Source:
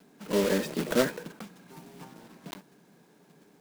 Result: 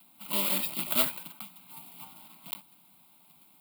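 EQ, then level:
spectral tilt +3 dB per octave
high-shelf EQ 11,000 Hz +6 dB
phaser with its sweep stopped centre 1,700 Hz, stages 6
0.0 dB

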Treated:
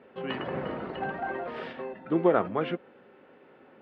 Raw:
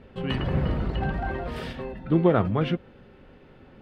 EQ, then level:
band-pass filter 330–2,400 Hz
0.0 dB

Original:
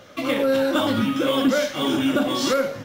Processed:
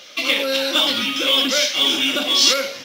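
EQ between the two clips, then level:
Bessel high-pass filter 320 Hz, order 2
high-shelf EQ 2,300 Hz +9.5 dB
flat-topped bell 3,600 Hz +9.5 dB
−2.5 dB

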